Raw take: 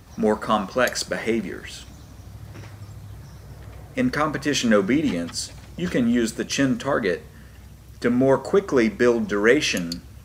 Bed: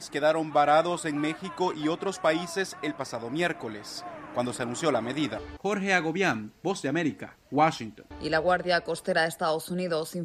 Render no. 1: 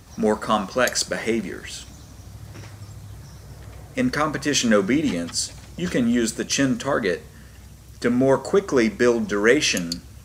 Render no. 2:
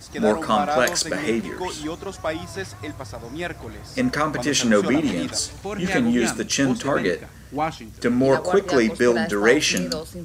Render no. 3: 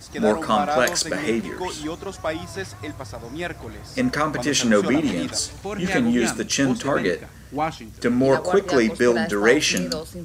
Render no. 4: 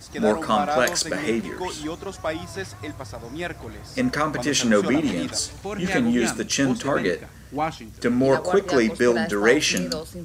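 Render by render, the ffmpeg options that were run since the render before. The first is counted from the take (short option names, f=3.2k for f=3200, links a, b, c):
-af "equalizer=f=7.3k:t=o:w=1.5:g=5.5"
-filter_complex "[1:a]volume=-2dB[a];[0:a][a]amix=inputs=2:normalize=0"
-af anull
-af "volume=-1dB"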